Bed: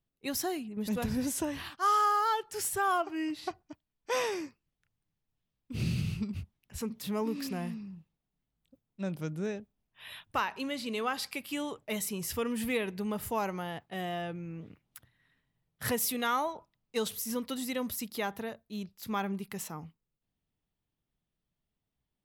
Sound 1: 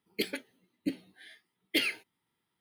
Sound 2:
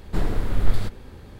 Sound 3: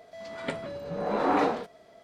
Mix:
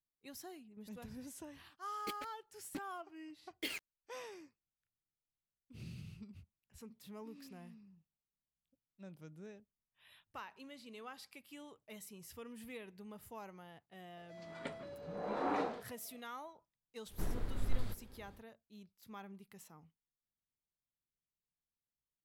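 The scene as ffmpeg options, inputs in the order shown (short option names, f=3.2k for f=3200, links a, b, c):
-filter_complex "[0:a]volume=-17.5dB[a];[1:a]acrusher=bits=4:mix=0:aa=0.5,atrim=end=2.6,asetpts=PTS-STARTPTS,volume=-13dB,afade=t=in:d=0.004:c=hsin,afade=t=out:st=2.596:d=0.004:c=hsin,adelay=1880[b];[3:a]atrim=end=2.03,asetpts=PTS-STARTPTS,volume=-11.5dB,afade=t=in:d=0.004:c=hsin,afade=t=out:st=2.026:d=0.004:c=hsin,adelay=14170[c];[2:a]atrim=end=1.39,asetpts=PTS-STARTPTS,volume=-15.5dB,afade=t=in:d=0.1,afade=t=out:st=1.29:d=0.1,adelay=17050[d];[a][b][c][d]amix=inputs=4:normalize=0"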